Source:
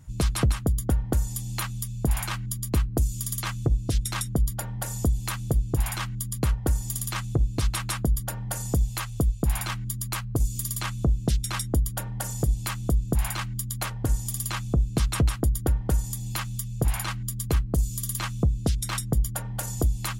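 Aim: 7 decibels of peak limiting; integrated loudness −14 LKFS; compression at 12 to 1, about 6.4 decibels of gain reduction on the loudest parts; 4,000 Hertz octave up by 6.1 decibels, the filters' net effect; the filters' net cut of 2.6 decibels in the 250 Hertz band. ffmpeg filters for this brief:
ffmpeg -i in.wav -af "equalizer=frequency=250:width_type=o:gain=-4,equalizer=frequency=4000:width_type=o:gain=7.5,acompressor=threshold=-24dB:ratio=12,volume=18.5dB,alimiter=limit=-2.5dB:level=0:latency=1" out.wav

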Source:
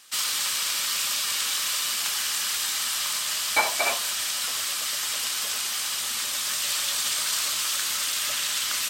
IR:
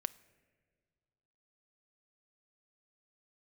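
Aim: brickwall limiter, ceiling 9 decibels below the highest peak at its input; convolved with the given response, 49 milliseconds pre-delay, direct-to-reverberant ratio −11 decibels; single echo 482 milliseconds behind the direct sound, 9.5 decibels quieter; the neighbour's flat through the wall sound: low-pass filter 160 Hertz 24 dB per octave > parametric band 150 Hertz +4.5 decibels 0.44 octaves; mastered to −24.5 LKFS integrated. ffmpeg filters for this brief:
-filter_complex "[0:a]alimiter=limit=-17.5dB:level=0:latency=1,aecho=1:1:482:0.335,asplit=2[link_01][link_02];[1:a]atrim=start_sample=2205,adelay=49[link_03];[link_02][link_03]afir=irnorm=-1:irlink=0,volume=12dB[link_04];[link_01][link_04]amix=inputs=2:normalize=0,lowpass=frequency=160:width=0.5412,lowpass=frequency=160:width=1.3066,equalizer=frequency=150:width_type=o:width=0.44:gain=4.5,volume=28dB"

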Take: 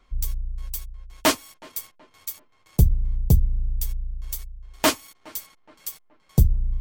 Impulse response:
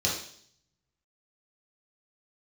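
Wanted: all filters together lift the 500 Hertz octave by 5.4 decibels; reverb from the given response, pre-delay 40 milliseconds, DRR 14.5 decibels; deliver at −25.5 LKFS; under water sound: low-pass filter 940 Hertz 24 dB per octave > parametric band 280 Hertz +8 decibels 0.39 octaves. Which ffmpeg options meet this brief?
-filter_complex "[0:a]equalizer=frequency=500:width_type=o:gain=7,asplit=2[link_01][link_02];[1:a]atrim=start_sample=2205,adelay=40[link_03];[link_02][link_03]afir=irnorm=-1:irlink=0,volume=-24dB[link_04];[link_01][link_04]amix=inputs=2:normalize=0,lowpass=frequency=940:width=0.5412,lowpass=frequency=940:width=1.3066,equalizer=frequency=280:width_type=o:width=0.39:gain=8,volume=-2dB"

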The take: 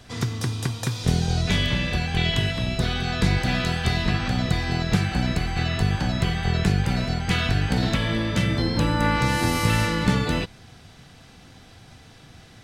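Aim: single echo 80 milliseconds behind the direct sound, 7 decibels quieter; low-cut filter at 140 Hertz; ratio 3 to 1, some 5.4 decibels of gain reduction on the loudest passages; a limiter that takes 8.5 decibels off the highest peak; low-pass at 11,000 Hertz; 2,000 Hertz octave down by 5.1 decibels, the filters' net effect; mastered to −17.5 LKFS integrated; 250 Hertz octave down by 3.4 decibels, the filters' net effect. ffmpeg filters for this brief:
ffmpeg -i in.wav -af "highpass=140,lowpass=11000,equalizer=frequency=250:width_type=o:gain=-3.5,equalizer=frequency=2000:width_type=o:gain=-6.5,acompressor=threshold=-27dB:ratio=3,alimiter=limit=-23dB:level=0:latency=1,aecho=1:1:80:0.447,volume=14.5dB" out.wav

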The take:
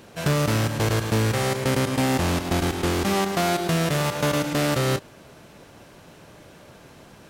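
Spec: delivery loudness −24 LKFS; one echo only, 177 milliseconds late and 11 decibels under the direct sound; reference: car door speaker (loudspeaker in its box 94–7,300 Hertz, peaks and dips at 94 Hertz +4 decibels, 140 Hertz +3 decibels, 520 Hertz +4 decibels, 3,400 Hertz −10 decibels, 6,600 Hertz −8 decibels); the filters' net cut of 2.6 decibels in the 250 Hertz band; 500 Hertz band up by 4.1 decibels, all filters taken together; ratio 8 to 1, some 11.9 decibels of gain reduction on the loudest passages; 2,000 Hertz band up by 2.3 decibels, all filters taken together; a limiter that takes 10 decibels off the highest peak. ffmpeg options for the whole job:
ffmpeg -i in.wav -af "equalizer=frequency=250:width_type=o:gain=-6,equalizer=frequency=500:width_type=o:gain=4,equalizer=frequency=2000:width_type=o:gain=3.5,acompressor=threshold=-31dB:ratio=8,alimiter=level_in=5dB:limit=-24dB:level=0:latency=1,volume=-5dB,highpass=94,equalizer=frequency=94:width_type=q:width=4:gain=4,equalizer=frequency=140:width_type=q:width=4:gain=3,equalizer=frequency=520:width_type=q:width=4:gain=4,equalizer=frequency=3400:width_type=q:width=4:gain=-10,equalizer=frequency=6600:width_type=q:width=4:gain=-8,lowpass=frequency=7300:width=0.5412,lowpass=frequency=7300:width=1.3066,aecho=1:1:177:0.282,volume=14dB" out.wav

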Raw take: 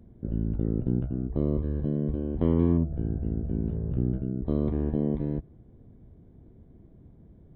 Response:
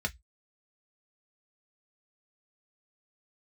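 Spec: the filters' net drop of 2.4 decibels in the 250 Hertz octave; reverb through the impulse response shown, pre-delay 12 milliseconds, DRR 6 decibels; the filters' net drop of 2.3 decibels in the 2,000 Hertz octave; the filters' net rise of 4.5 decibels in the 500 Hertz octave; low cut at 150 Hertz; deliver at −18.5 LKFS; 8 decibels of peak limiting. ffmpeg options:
-filter_complex "[0:a]highpass=150,equalizer=frequency=250:width_type=o:gain=-4.5,equalizer=frequency=500:width_type=o:gain=8,equalizer=frequency=2000:width_type=o:gain=-3.5,alimiter=limit=-18.5dB:level=0:latency=1,asplit=2[link_01][link_02];[1:a]atrim=start_sample=2205,adelay=12[link_03];[link_02][link_03]afir=irnorm=-1:irlink=0,volume=-11dB[link_04];[link_01][link_04]amix=inputs=2:normalize=0,volume=13dB"

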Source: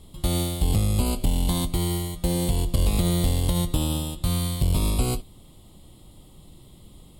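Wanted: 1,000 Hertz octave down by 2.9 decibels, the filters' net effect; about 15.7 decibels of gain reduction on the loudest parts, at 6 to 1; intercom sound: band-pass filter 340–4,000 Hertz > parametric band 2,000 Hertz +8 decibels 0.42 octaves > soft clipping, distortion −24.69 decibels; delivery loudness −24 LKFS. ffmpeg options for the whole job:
ffmpeg -i in.wav -af "equalizer=frequency=1000:width_type=o:gain=-4,acompressor=threshold=-35dB:ratio=6,highpass=340,lowpass=4000,equalizer=frequency=2000:width_type=o:width=0.42:gain=8,asoftclip=threshold=-33dB,volume=24.5dB" out.wav

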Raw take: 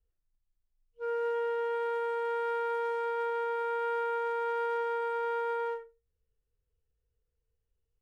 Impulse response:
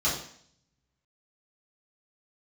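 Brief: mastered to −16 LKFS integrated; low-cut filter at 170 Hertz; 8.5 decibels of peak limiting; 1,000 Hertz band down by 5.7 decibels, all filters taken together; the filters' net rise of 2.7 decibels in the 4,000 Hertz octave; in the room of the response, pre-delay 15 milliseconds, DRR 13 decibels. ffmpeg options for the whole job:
-filter_complex "[0:a]highpass=170,equalizer=frequency=1000:width_type=o:gain=-7.5,equalizer=frequency=4000:width_type=o:gain=4.5,alimiter=level_in=11.5dB:limit=-24dB:level=0:latency=1,volume=-11.5dB,asplit=2[link_01][link_02];[1:a]atrim=start_sample=2205,adelay=15[link_03];[link_02][link_03]afir=irnorm=-1:irlink=0,volume=-23.5dB[link_04];[link_01][link_04]amix=inputs=2:normalize=0,volume=27dB"

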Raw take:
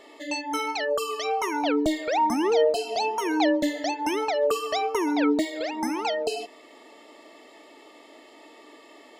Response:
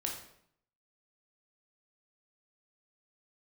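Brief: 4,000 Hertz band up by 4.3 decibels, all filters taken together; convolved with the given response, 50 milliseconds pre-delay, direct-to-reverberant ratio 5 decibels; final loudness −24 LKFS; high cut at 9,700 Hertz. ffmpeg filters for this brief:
-filter_complex "[0:a]lowpass=9700,equalizer=frequency=4000:width_type=o:gain=5.5,asplit=2[link_01][link_02];[1:a]atrim=start_sample=2205,adelay=50[link_03];[link_02][link_03]afir=irnorm=-1:irlink=0,volume=-6.5dB[link_04];[link_01][link_04]amix=inputs=2:normalize=0"

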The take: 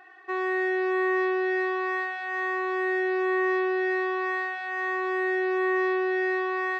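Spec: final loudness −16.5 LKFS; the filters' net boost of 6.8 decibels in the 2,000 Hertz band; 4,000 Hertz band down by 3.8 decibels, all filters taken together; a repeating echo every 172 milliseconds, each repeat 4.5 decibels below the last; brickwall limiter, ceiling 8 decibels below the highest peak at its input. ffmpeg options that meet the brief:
ffmpeg -i in.wav -af "equalizer=frequency=2000:width_type=o:gain=9,equalizer=frequency=4000:width_type=o:gain=-8.5,alimiter=limit=-22dB:level=0:latency=1,aecho=1:1:172|344|516|688|860|1032|1204|1376|1548:0.596|0.357|0.214|0.129|0.0772|0.0463|0.0278|0.0167|0.01,volume=10dB" out.wav

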